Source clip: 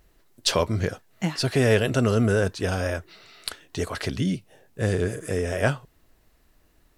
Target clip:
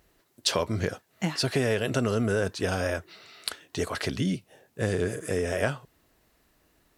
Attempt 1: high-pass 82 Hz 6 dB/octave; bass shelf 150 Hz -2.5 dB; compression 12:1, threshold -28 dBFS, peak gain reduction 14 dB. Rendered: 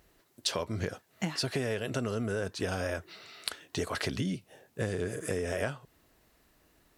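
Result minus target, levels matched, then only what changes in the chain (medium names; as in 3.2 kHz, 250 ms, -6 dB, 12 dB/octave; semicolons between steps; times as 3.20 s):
compression: peak gain reduction +7 dB
change: compression 12:1, threshold -20.5 dBFS, peak gain reduction 7 dB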